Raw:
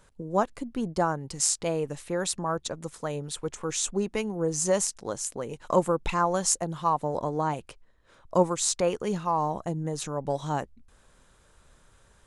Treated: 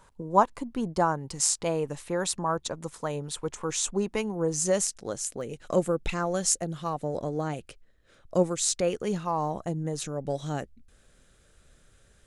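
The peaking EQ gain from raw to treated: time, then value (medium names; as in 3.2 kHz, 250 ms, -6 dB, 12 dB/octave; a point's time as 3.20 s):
peaking EQ 970 Hz 0.49 oct
+10 dB
from 0.72 s +3.5 dB
from 4.54 s -7.5 dB
from 5.41 s -13.5 dB
from 9.03 s -4.5 dB
from 10.02 s -14 dB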